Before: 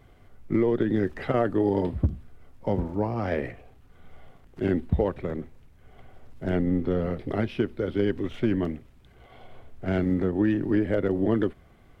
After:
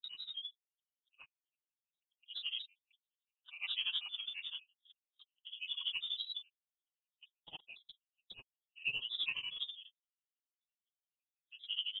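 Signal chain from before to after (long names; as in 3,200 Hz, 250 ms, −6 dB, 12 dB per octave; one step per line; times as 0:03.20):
spectral envelope exaggerated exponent 1.5
reverb whose tail is shaped and stops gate 240 ms flat, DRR 8.5 dB
voice inversion scrambler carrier 3,300 Hz
parametric band 1,800 Hz −11.5 dB 1.1 octaves
on a send: repeating echo 587 ms, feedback 32%, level −15 dB
on the sum: dynamic equaliser 2,400 Hz, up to +3 dB, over −38 dBFS, Q 1.2
hum removal 112.7 Hz, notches 14
compressor whose output falls as the input rises −44 dBFS, ratio −0.5
comb filter 6.5 ms, depth 82%
noise gate −48 dBFS, range −36 dB
granular cloud 100 ms, grains 12 per second, spray 36 ms, pitch spread up and down by 3 semitones
level −2.5 dB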